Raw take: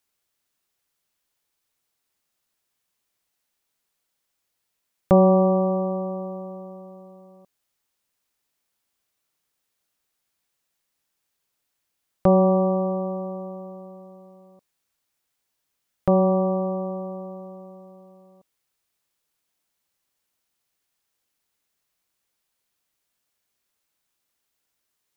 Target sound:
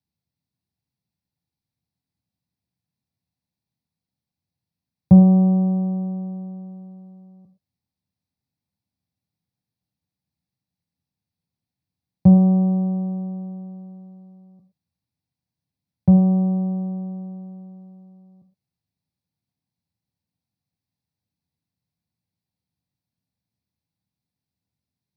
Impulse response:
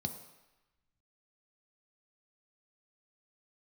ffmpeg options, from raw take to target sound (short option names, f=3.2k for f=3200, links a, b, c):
-filter_complex "[0:a]bass=f=250:g=15,treble=f=4k:g=-3[a];[1:a]atrim=start_sample=2205,afade=t=out:st=0.18:d=0.01,atrim=end_sample=8379[b];[a][b]afir=irnorm=-1:irlink=0,volume=-13dB"